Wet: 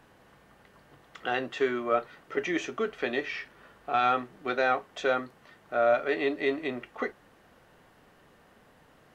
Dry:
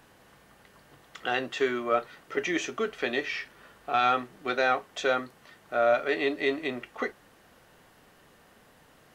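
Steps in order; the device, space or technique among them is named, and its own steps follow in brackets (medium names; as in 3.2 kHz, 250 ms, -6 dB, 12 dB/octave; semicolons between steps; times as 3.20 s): behind a face mask (treble shelf 3.4 kHz -8 dB)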